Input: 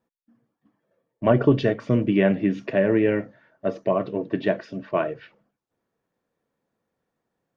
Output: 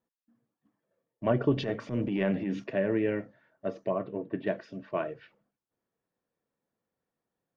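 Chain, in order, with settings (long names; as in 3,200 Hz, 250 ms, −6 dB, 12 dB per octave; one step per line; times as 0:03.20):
0:01.54–0:02.64: transient designer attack −10 dB, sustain +6 dB
0:03.90–0:04.47: low-pass filter 2,300 Hz 12 dB per octave
level −8 dB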